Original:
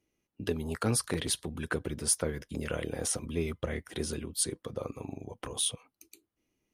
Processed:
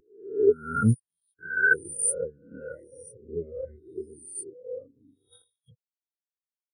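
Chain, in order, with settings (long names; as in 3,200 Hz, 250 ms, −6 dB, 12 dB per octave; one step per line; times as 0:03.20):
peak hold with a rise ahead of every peak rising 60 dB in 2.13 s
0:00.94–0:01.39: guitar amp tone stack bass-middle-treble 5-5-5
0:02.76–0:03.99: mains-hum notches 50/100/150/200/250/300/350/400/450 Hz
0:05.32–0:05.73: compressor whose output falls as the input rises −31 dBFS, ratio −0.5
dynamic equaliser 1,500 Hz, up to +7 dB, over −50 dBFS, Q 6.8
every bin expanded away from the loudest bin 4 to 1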